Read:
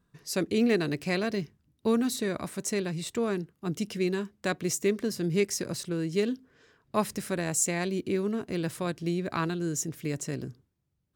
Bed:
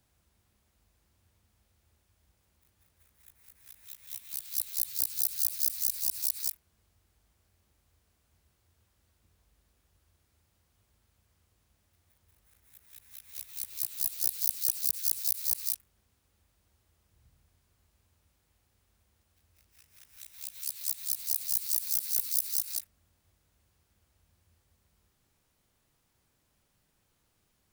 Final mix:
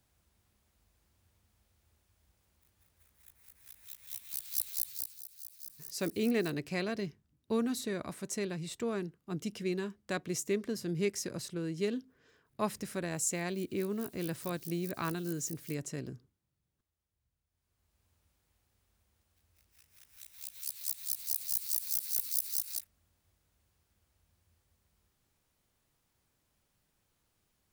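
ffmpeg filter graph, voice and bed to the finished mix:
ffmpeg -i stem1.wav -i stem2.wav -filter_complex "[0:a]adelay=5650,volume=-6dB[link_01];[1:a]volume=14dB,afade=type=out:start_time=4.67:duration=0.53:silence=0.133352,afade=type=in:start_time=17.48:duration=0.63:silence=0.16788[link_02];[link_01][link_02]amix=inputs=2:normalize=0" out.wav

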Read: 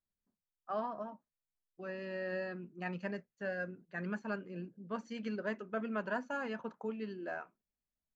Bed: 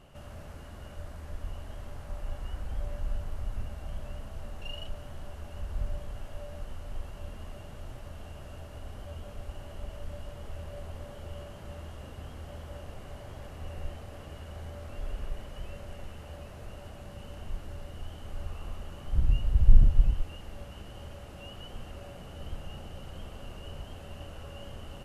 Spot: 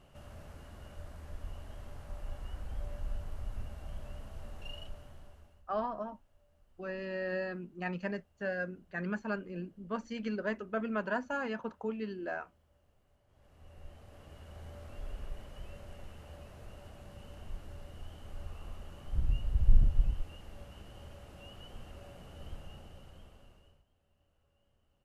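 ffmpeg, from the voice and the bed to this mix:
ffmpeg -i stem1.wav -i stem2.wav -filter_complex "[0:a]adelay=5000,volume=3dB[link_01];[1:a]volume=16.5dB,afade=type=out:start_time=4.68:duration=0.96:silence=0.0749894,afade=type=in:start_time=13.27:duration=1.47:silence=0.0841395,afade=type=out:start_time=22.51:duration=1.33:silence=0.0530884[link_02];[link_01][link_02]amix=inputs=2:normalize=0" out.wav

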